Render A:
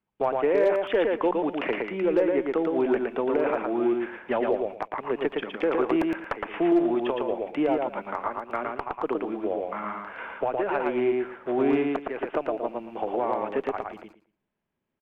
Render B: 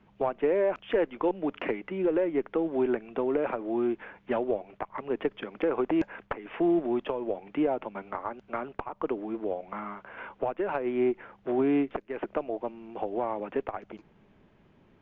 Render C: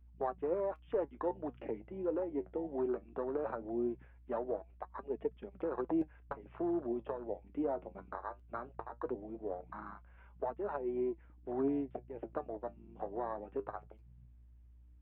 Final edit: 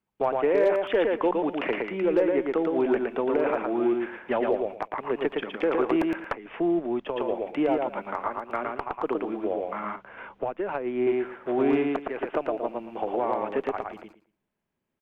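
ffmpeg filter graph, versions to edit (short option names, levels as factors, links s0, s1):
-filter_complex "[1:a]asplit=2[s0][s1];[0:a]asplit=3[s2][s3][s4];[s2]atrim=end=6.352[s5];[s0]atrim=start=6.348:end=7.162[s6];[s3]atrim=start=7.158:end=9.962[s7];[s1]atrim=start=9.958:end=11.072[s8];[s4]atrim=start=11.068[s9];[s5][s6]acrossfade=d=0.004:c1=hsin:c2=hsin[s10];[s10][s7]acrossfade=d=0.004:c1=hsin:c2=hsin[s11];[s11][s8]acrossfade=d=0.004:c1=hsin:c2=hsin[s12];[s12][s9]acrossfade=d=0.004:c1=hsin:c2=hsin"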